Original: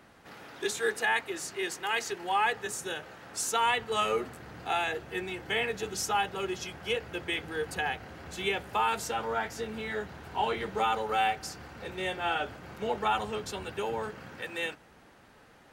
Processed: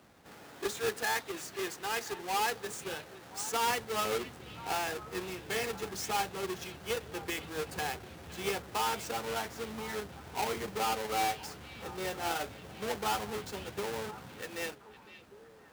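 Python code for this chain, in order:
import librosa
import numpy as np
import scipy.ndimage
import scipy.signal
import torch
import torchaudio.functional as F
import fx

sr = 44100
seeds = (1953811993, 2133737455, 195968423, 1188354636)

y = fx.halfwave_hold(x, sr)
y = scipy.signal.sosfilt(scipy.signal.butter(2, 47.0, 'highpass', fs=sr, output='sos'), y)
y = fx.echo_stepped(y, sr, ms=512, hz=2900.0, octaves=-1.4, feedback_pct=70, wet_db=-11.5)
y = F.gain(torch.from_numpy(y), -8.0).numpy()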